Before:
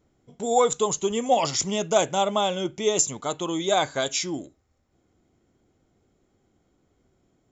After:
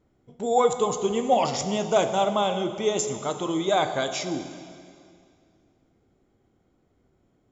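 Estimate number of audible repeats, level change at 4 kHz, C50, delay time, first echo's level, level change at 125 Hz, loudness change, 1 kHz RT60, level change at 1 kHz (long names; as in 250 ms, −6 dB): no echo audible, −3.0 dB, 9.0 dB, no echo audible, no echo audible, +1.0 dB, −0.5 dB, 2.3 s, +0.5 dB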